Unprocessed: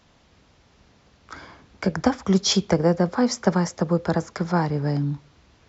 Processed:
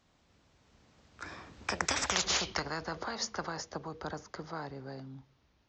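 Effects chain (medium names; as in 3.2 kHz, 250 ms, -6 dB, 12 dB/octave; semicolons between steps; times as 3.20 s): Doppler pass-by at 2.13 s, 26 m/s, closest 2.3 m; spectrum-flattening compressor 10:1; trim -1 dB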